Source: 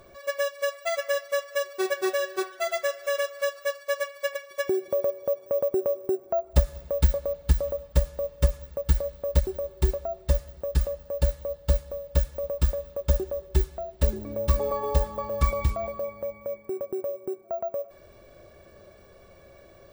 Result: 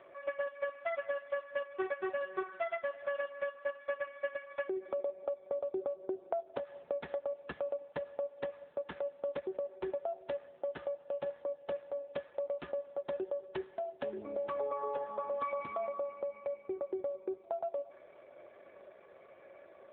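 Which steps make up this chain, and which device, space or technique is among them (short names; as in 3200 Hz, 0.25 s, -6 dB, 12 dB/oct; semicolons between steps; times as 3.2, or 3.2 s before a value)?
voicemail (BPF 400–2600 Hz; compressor 6:1, threshold -32 dBFS, peak gain reduction 10 dB; AMR-NB 7.4 kbps 8000 Hz)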